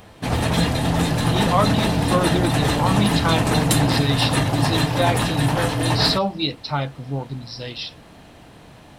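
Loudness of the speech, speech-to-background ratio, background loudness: −24.0 LKFS, −3.5 dB, −20.5 LKFS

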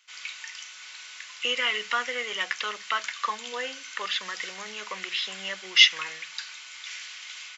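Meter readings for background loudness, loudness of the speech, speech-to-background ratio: −38.5 LKFS, −26.0 LKFS, 12.5 dB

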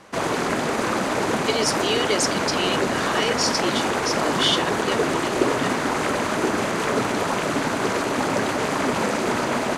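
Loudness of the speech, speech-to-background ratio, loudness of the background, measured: −25.5 LKFS, −2.5 dB, −23.0 LKFS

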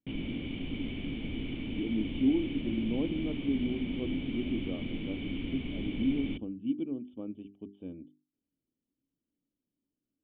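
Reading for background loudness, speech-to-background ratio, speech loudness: −37.5 LKFS, 3.0 dB, −34.5 LKFS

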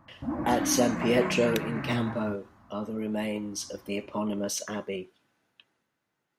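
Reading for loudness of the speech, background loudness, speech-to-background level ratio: −30.0 LKFS, −33.5 LKFS, 3.5 dB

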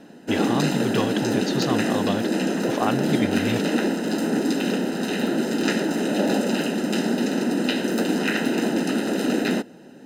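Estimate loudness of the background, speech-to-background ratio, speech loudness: −23.5 LKFS, −4.5 dB, −28.0 LKFS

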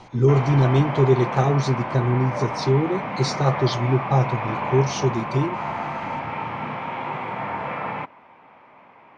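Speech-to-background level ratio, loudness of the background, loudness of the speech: 7.0 dB, −28.5 LKFS, −21.5 LKFS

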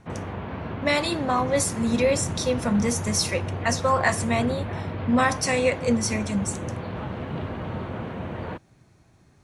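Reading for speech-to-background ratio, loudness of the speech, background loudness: 8.0 dB, −24.5 LKFS, −32.5 LKFS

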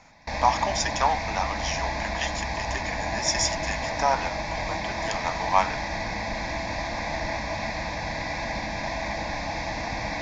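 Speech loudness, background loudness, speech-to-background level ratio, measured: −28.5 LKFS, −30.0 LKFS, 1.5 dB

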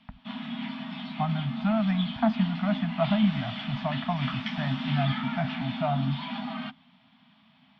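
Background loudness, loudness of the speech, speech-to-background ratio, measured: −34.5 LKFS, −29.0 LKFS, 5.5 dB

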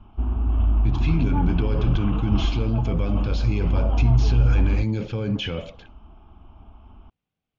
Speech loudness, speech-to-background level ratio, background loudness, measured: −26.0 LKFS, −1.5 dB, −24.5 LKFS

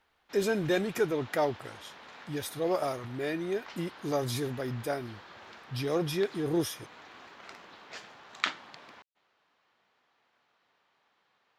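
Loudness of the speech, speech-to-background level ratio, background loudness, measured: −32.0 LKFS, 13.0 dB, −45.0 LKFS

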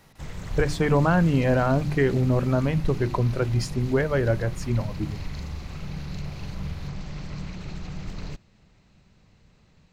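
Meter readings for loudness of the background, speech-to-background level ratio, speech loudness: −37.0 LKFS, 13.0 dB, −24.0 LKFS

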